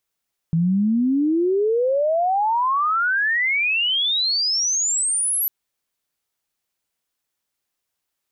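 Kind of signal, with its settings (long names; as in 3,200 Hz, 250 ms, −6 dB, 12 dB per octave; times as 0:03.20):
glide logarithmic 160 Hz → 12,000 Hz −15.5 dBFS → −18.5 dBFS 4.95 s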